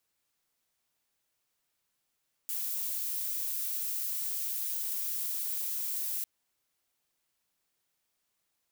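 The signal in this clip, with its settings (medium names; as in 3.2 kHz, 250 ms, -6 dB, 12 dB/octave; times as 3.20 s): noise violet, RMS -34 dBFS 3.75 s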